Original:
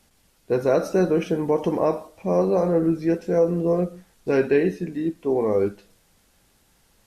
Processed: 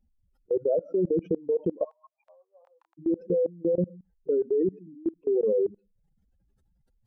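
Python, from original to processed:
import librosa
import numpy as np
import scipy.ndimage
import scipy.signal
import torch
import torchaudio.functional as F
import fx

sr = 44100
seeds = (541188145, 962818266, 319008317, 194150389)

y = fx.spec_expand(x, sr, power=3.2)
y = fx.level_steps(y, sr, step_db=23)
y = fx.steep_highpass(y, sr, hz=870.0, slope=48, at=(1.83, 2.97), fade=0.02)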